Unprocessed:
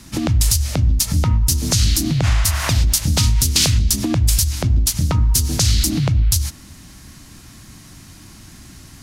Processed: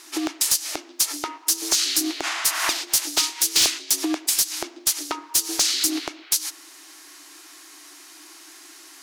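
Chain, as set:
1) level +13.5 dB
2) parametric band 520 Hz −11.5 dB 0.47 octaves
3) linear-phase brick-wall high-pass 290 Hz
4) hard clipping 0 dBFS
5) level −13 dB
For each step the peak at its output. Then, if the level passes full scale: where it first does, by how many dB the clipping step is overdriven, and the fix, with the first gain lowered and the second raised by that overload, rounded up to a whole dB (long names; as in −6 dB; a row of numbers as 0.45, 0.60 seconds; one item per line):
+8.5, +9.0, +10.0, 0.0, −13.0 dBFS
step 1, 10.0 dB
step 1 +3.5 dB, step 5 −3 dB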